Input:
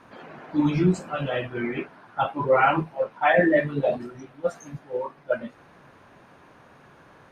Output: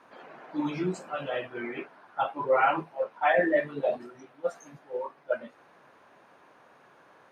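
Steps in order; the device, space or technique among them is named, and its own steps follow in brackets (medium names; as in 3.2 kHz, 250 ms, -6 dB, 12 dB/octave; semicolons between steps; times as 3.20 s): filter by subtraction (in parallel: low-pass 600 Hz 12 dB/octave + polarity flip); on the sum: trim -5.5 dB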